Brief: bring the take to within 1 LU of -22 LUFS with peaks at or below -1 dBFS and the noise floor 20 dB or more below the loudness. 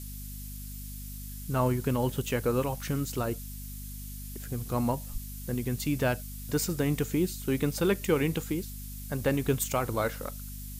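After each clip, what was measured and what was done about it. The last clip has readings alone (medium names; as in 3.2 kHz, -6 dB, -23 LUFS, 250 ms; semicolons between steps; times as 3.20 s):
hum 50 Hz; highest harmonic 250 Hz; hum level -38 dBFS; noise floor -40 dBFS; noise floor target -51 dBFS; loudness -31.0 LUFS; peak level -14.5 dBFS; loudness target -22.0 LUFS
-> de-hum 50 Hz, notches 5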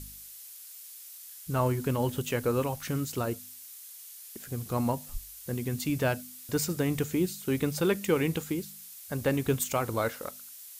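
hum not found; noise floor -47 dBFS; noise floor target -51 dBFS
-> noise print and reduce 6 dB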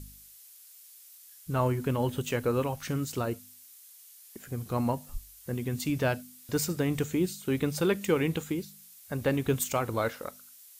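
noise floor -53 dBFS; loudness -30.5 LUFS; peak level -15.0 dBFS; loudness target -22.0 LUFS
-> trim +8.5 dB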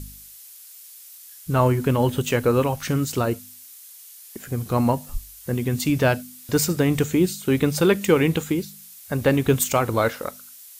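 loudness -22.0 LUFS; peak level -6.5 dBFS; noise floor -45 dBFS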